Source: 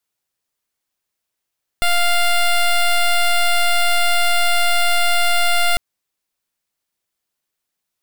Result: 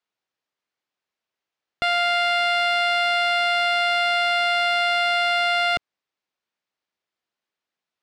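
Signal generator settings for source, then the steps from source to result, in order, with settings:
pulse 699 Hz, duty 11% -14.5 dBFS 3.95 s
high-pass 240 Hz 6 dB/octave; distance through air 160 m

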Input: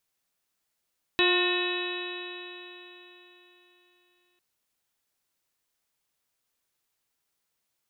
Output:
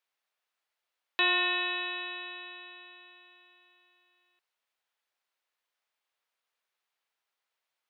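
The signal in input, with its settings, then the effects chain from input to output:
stretched partials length 3.20 s, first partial 355 Hz, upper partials -10.5/-7.5/-14/-4/-18.5/-1/-8/-10/-2.5 dB, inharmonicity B 0.0017, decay 3.74 s, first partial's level -23.5 dB
three-band isolator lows -21 dB, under 470 Hz, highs -13 dB, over 4.1 kHz

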